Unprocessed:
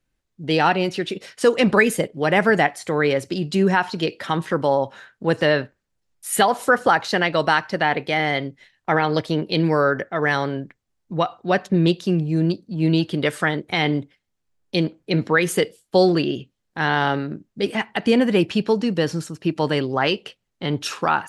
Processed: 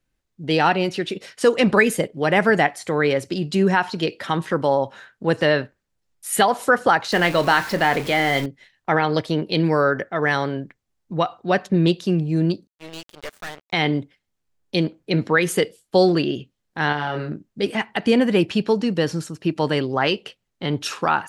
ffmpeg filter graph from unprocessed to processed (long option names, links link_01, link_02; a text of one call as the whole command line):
ffmpeg -i in.wav -filter_complex "[0:a]asettb=1/sr,asplit=3[link_01][link_02][link_03];[link_01]atrim=end=7.124[link_04];[link_02]atrim=start=7.12:end=8.46,asetpts=PTS-STARTPTS,afade=type=in:duration=0.004:curve=qsin,afade=type=out:start_time=1.336:duration=0.004:curve=qsin,aeval=exprs='val(0)+0.5*0.0398*sgn(val(0))':channel_layout=same,asplit=2[link_05][link_06];[link_06]adelay=29,volume=-12dB[link_07];[link_05][link_07]amix=inputs=2:normalize=0,atrim=end_sample=59094[link_08];[link_03]atrim=start=8.456[link_09];[link_04][link_08]acrossfade=duration=0.004:curve1=hsin:curve2=qsin[link_10];[link_10][link_09]acrossfade=duration=0.004:curve1=qsin:curve2=hsin,asettb=1/sr,asplit=3[link_11][link_12][link_13];[link_11]atrim=end=12.674[link_14];[link_12]atrim=start=12.67:end=13.73,asetpts=PTS-STARTPTS,afade=type=in:duration=0.004:curve=qsin,afade=type=out:start_time=1.056:duration=0.004:curve=qsin,highpass=frequency=690:width_type=q:width=1.5,aeval=exprs='sgn(val(0))*max(abs(val(0))-0.0237,0)':channel_layout=same,aeval=exprs='(tanh(28.2*val(0)+0.7)-tanh(0.7))/28.2':channel_layout=same[link_15];[link_13]atrim=start=13.726[link_16];[link_14][link_15]acrossfade=duration=0.004:curve1=hsin:curve2=qsin[link_17];[link_17][link_16]acrossfade=duration=0.004:curve1=qsin:curve2=hsin,asettb=1/sr,asplit=3[link_18][link_19][link_20];[link_18]atrim=end=16.924[link_21];[link_19]atrim=start=16.92:end=17.33,asetpts=PTS-STARTPTS,afade=type=in:duration=0.004:curve=qsin,afade=type=out:start_time=0.406:duration=0.004:curve=qsin,bandreject=frequency=3800:width=15,asplit=2[link_22][link_23];[link_23]adelay=27,volume=-5dB[link_24];[link_22][link_24]amix=inputs=2:normalize=0,atrim=end_sample=18081,acompressor=threshold=-21dB:ratio=3:attack=3.2:release=140:knee=1:detection=peak[link_25];[link_20]atrim=start=17.326[link_26];[link_21][link_25]acrossfade=duration=0.004:curve1=hsin:curve2=qsin[link_27];[link_27][link_26]acrossfade=duration=0.004:curve1=qsin:curve2=hsin" out.wav